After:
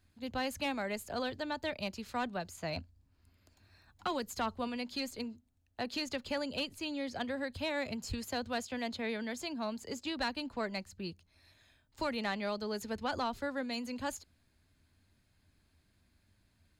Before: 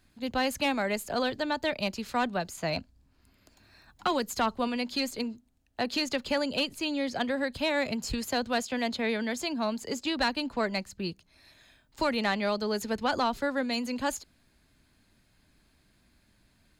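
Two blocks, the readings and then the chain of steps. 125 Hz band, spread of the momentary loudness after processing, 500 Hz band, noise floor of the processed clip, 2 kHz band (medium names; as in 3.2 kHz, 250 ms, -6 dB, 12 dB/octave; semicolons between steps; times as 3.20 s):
-5.0 dB, 5 LU, -7.5 dB, -73 dBFS, -7.5 dB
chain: peaking EQ 88 Hz +13 dB 0.39 oct; trim -7.5 dB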